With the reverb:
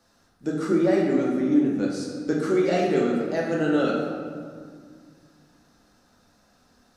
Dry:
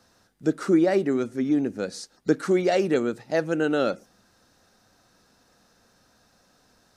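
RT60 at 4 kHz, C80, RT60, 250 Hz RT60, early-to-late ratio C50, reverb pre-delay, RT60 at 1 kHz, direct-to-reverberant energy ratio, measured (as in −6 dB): 1.2 s, 3.0 dB, 2.0 s, 2.9 s, 1.5 dB, 3 ms, 2.0 s, −3.5 dB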